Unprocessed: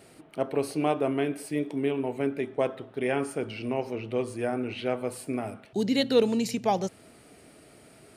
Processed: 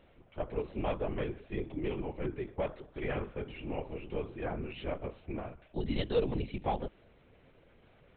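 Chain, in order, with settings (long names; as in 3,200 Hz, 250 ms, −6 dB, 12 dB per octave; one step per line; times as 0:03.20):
linear-prediction vocoder at 8 kHz whisper
level −7.5 dB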